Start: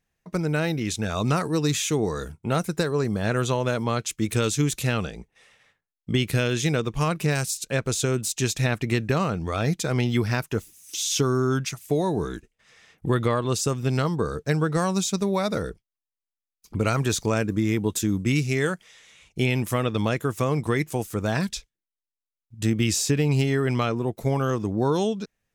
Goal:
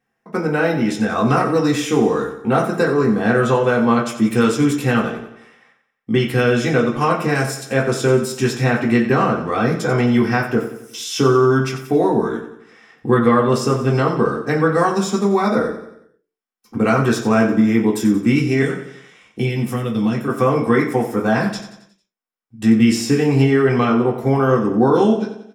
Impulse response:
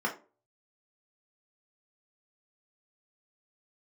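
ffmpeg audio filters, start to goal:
-filter_complex "[0:a]asettb=1/sr,asplit=3[a][b][c];[a]atrim=end=18.624[d];[b]atrim=start=18.62:end=20.28,asetpts=PTS-STARTPTS,afade=t=in:d=0.004:c=qsin,afade=t=out:st=1.656:d=0.004:c=qsin,acrossover=split=290|3000[e][f][g];[f]acompressor=threshold=-37dB:ratio=6[h];[e][h][g]amix=inputs=3:normalize=0[i];[c]atrim=start=20.276[j];[d][i]acrossfade=d=0.004:c1=hsin:c2=qsin[k];[k][j]acrossfade=d=0.004:c1=qsin:c2=hsin,aecho=1:1:90|180|270|360|450:0.266|0.13|0.0639|0.0313|0.0153[l];[1:a]atrim=start_sample=2205,afade=t=out:st=0.33:d=0.01,atrim=end_sample=14994[m];[l][m]afir=irnorm=-1:irlink=0"

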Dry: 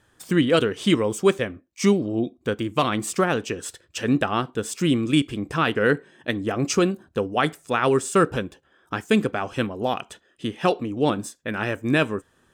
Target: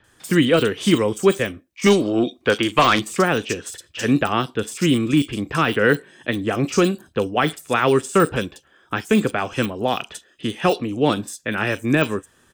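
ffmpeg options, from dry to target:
-filter_complex "[0:a]deesser=0.75,asettb=1/sr,asplit=3[a][b][c];[a]atrim=end=1.864[d];[b]atrim=start=1.86:end=2.99,asetpts=PTS-STARTPTS,afade=t=in:d=0.004:c=qsin,afade=t=out:st=1.126:d=0.004:c=qsin,asplit=2[e][f];[f]highpass=f=720:p=1,volume=15dB,asoftclip=type=tanh:threshold=-7.5dB[g];[e][g]amix=inputs=2:normalize=0,lowpass=f=5.6k:p=1,volume=-6dB[h];[c]atrim=start=2.986[i];[d][h]acrossfade=d=0.004:c1=hsin:c2=qsin[j];[j][i]acrossfade=d=0.004:c1=qsin:c2=hsin,acrossover=split=310|670|2000[k][l][m][n];[n]acontrast=81[o];[k][l][m][o]amix=inputs=4:normalize=0,acrossover=split=3500[p][q];[q]adelay=40[r];[p][r]amix=inputs=2:normalize=0,volume=3dB"

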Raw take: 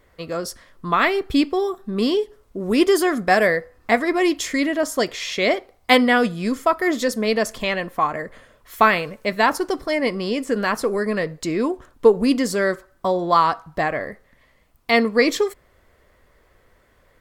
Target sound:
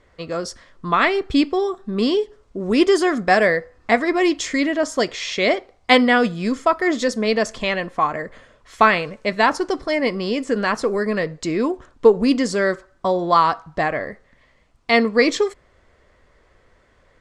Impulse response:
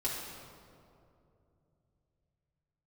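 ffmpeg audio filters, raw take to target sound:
-af "lowpass=f=7.9k:w=0.5412,lowpass=f=7.9k:w=1.3066,volume=1dB"

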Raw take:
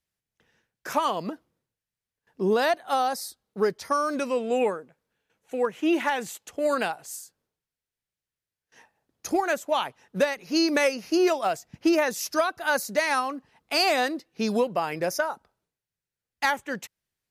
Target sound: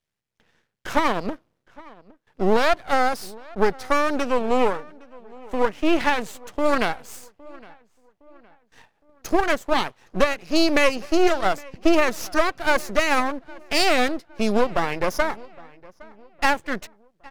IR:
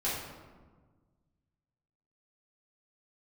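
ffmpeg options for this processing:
-filter_complex "[0:a]highpass=f=69:w=0.5412,highpass=f=69:w=1.3066,highshelf=f=7.1k:g=-11.5,aeval=exprs='max(val(0),0)':c=same,asplit=2[a][b];[b]adelay=813,lowpass=f=2.7k:p=1,volume=-22.5dB,asplit=2[c][d];[d]adelay=813,lowpass=f=2.7k:p=1,volume=0.42,asplit=2[e][f];[f]adelay=813,lowpass=f=2.7k:p=1,volume=0.42[g];[a][c][e][g]amix=inputs=4:normalize=0,volume=8dB"

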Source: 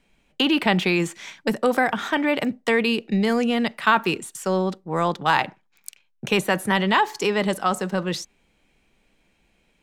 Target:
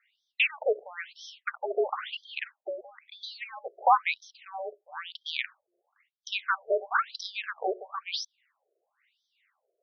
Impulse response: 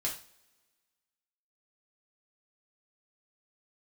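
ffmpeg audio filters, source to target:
-af "equalizer=f=110:w=0.46:g=9,afreqshift=-350,afftfilt=real='re*between(b*sr/1024,500*pow(4500/500,0.5+0.5*sin(2*PI*1*pts/sr))/1.41,500*pow(4500/500,0.5+0.5*sin(2*PI*1*pts/sr))*1.41)':imag='im*between(b*sr/1024,500*pow(4500/500,0.5+0.5*sin(2*PI*1*pts/sr))/1.41,500*pow(4500/500,0.5+0.5*sin(2*PI*1*pts/sr))*1.41)':win_size=1024:overlap=0.75"

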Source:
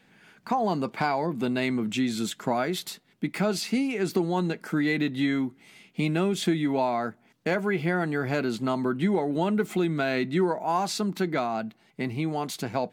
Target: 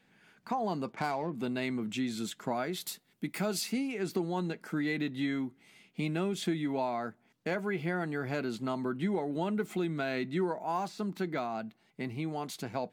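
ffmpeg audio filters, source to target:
-filter_complex "[0:a]asplit=3[a][b][c];[a]afade=t=out:st=0.91:d=0.02[d];[b]adynamicsmooth=sensitivity=5.5:basefreq=1.5k,afade=t=in:st=0.91:d=0.02,afade=t=out:st=1.32:d=0.02[e];[c]afade=t=in:st=1.32:d=0.02[f];[d][e][f]amix=inputs=3:normalize=0,asettb=1/sr,asplit=3[g][h][i];[g]atrim=end=2.804[j];[h]atrim=start=2.8:end=3.73,asetpts=PTS-STARTPTS,afade=t=in:d=0.004:c=qsin,afade=t=out:st=0.926:d=0.004:c=qsin,highshelf=f=7.5k:g=12[k];[i]atrim=start=3.726[l];[j][k]acrossfade=d=0.004:c1=hsin:c2=qsin[m];[m][l]acrossfade=d=0.004:c1=qsin:c2=hsin,asettb=1/sr,asplit=3[n][o][p];[n]atrim=end=10.744[q];[o]atrim=start=10.74:end=11.46,asetpts=PTS-STARTPTS,afade=t=in:d=0.004:c=qsin,afade=t=out:st=0.716:d=0.004:c=qsin,deesser=0.9[r];[p]atrim=start=11.456[s];[q][r]acrossfade=d=0.004:c1=hsin:c2=qsin[t];[t][s]acrossfade=d=0.004:c1=qsin:c2=hsin,volume=-7dB"

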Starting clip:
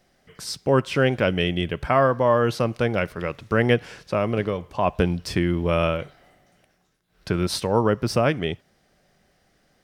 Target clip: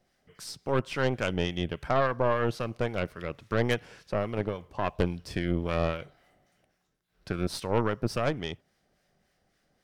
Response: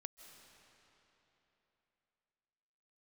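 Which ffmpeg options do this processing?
-filter_complex "[0:a]acrossover=split=1000[a][b];[a]aeval=exprs='val(0)*(1-0.5/2+0.5/2*cos(2*PI*3.6*n/s))':c=same[c];[b]aeval=exprs='val(0)*(1-0.5/2-0.5/2*cos(2*PI*3.6*n/s))':c=same[d];[c][d]amix=inputs=2:normalize=0,aeval=exprs='0.447*(cos(1*acos(clip(val(0)/0.447,-1,1)))-cos(1*PI/2))+0.0794*(cos(6*acos(clip(val(0)/0.447,-1,1)))-cos(6*PI/2))+0.0178*(cos(8*acos(clip(val(0)/0.447,-1,1)))-cos(8*PI/2))':c=same,volume=-6dB"

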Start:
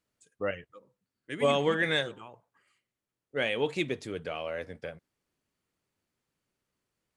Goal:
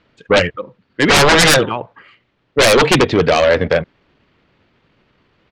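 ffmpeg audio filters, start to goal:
-af "atempo=1.3,lowpass=f=3.7k:w=0.5412,lowpass=f=3.7k:w=1.3066,aeval=exprs='0.237*sin(PI/2*7.08*val(0)/0.237)':c=same,volume=6dB"

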